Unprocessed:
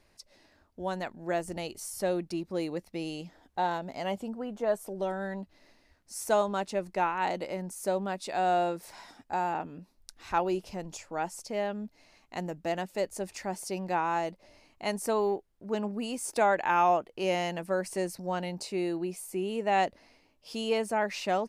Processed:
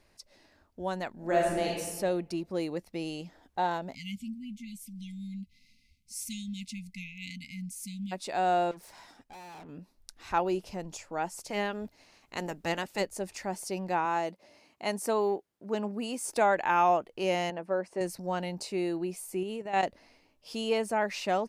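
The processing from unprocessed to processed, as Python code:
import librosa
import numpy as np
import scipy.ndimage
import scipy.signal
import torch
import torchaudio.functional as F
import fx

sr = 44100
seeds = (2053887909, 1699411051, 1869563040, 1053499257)

y = fx.reverb_throw(x, sr, start_s=1.12, length_s=0.57, rt60_s=1.3, drr_db=-3.0)
y = fx.brickwall_bandstop(y, sr, low_hz=260.0, high_hz=2000.0, at=(3.93, 8.11), fade=0.02)
y = fx.tube_stage(y, sr, drive_db=46.0, bias=0.55, at=(8.71, 9.69))
y = fx.spec_clip(y, sr, under_db=13, at=(11.37, 13.02), fade=0.02)
y = fx.highpass(y, sr, hz=150.0, slope=12, at=(14.05, 16.25))
y = fx.bandpass_q(y, sr, hz=590.0, q=0.53, at=(17.5, 18.01))
y = fx.level_steps(y, sr, step_db=12, at=(19.43, 19.83))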